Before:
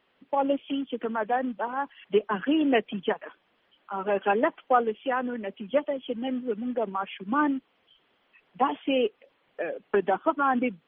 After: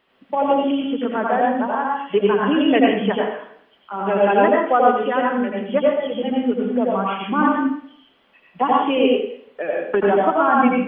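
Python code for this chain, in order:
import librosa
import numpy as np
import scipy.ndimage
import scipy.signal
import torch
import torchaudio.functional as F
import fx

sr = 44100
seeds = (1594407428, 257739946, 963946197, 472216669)

y = fx.rev_plate(x, sr, seeds[0], rt60_s=0.63, hf_ratio=0.9, predelay_ms=75, drr_db=-2.5)
y = y * librosa.db_to_amplitude(4.0)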